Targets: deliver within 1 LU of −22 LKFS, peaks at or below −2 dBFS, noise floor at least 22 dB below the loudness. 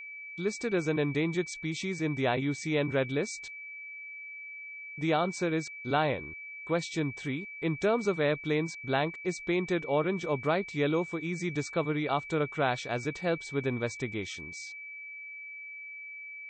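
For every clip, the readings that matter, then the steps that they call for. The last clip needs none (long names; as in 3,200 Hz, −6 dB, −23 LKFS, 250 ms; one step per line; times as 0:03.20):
interfering tone 2,300 Hz; level of the tone −41 dBFS; integrated loudness −32.0 LKFS; sample peak −13.5 dBFS; target loudness −22.0 LKFS
→ notch filter 2,300 Hz, Q 30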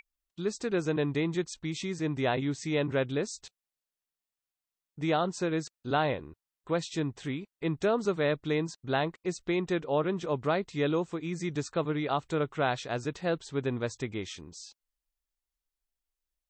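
interfering tone none found; integrated loudness −31.5 LKFS; sample peak −14.0 dBFS; target loudness −22.0 LKFS
→ level +9.5 dB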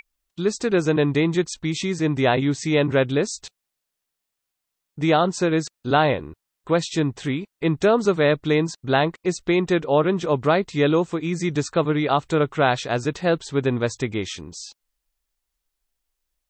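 integrated loudness −22.0 LKFS; sample peak −4.5 dBFS; background noise floor −82 dBFS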